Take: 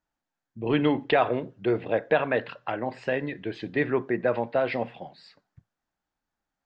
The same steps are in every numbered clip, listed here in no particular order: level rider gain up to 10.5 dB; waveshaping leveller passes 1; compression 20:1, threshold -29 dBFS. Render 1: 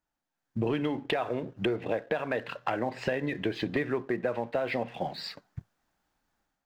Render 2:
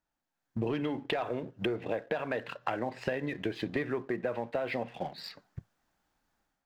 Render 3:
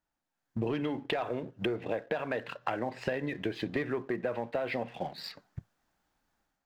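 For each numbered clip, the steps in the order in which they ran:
level rider > compression > waveshaping leveller; waveshaping leveller > level rider > compression; level rider > waveshaping leveller > compression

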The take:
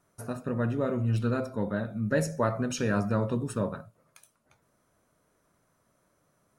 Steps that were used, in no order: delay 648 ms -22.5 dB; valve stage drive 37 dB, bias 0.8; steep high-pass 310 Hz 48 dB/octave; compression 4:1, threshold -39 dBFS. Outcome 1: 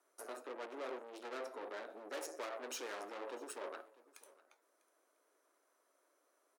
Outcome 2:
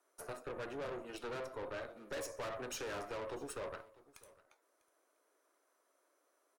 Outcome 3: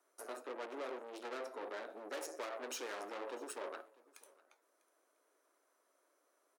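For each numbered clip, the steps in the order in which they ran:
valve stage > delay > compression > steep high-pass; steep high-pass > valve stage > delay > compression; valve stage > steep high-pass > compression > delay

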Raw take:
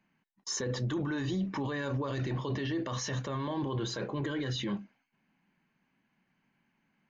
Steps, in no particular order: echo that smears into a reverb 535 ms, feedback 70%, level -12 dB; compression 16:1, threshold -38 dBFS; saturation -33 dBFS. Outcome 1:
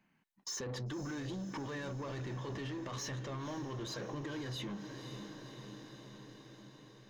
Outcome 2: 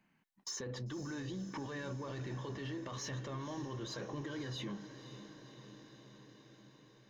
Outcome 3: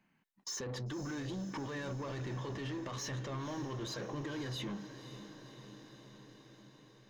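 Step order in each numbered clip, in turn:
saturation > echo that smears into a reverb > compression; compression > saturation > echo that smears into a reverb; saturation > compression > echo that smears into a reverb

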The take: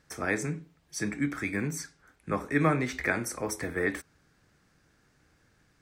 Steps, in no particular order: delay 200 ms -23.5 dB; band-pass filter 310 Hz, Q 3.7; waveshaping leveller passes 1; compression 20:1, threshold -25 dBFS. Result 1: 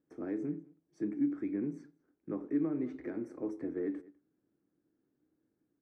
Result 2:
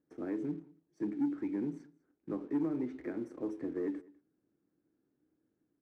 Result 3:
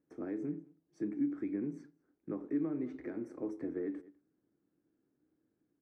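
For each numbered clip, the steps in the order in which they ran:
delay > compression > waveshaping leveller > band-pass filter; compression > band-pass filter > waveshaping leveller > delay; delay > waveshaping leveller > compression > band-pass filter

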